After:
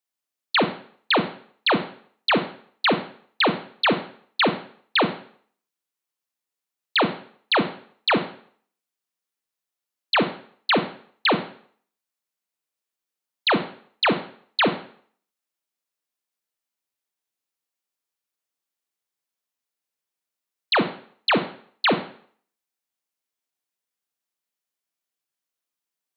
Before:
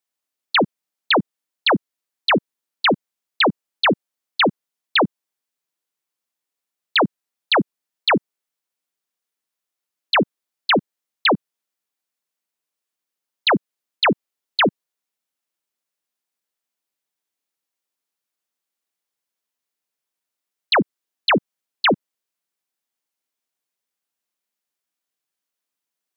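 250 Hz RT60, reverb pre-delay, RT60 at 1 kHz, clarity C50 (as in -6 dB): 0.50 s, 25 ms, 0.55 s, 11.0 dB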